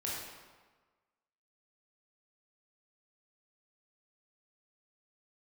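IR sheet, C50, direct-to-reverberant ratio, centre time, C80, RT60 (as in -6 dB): -0.5 dB, -6.0 dB, 86 ms, 2.0 dB, 1.4 s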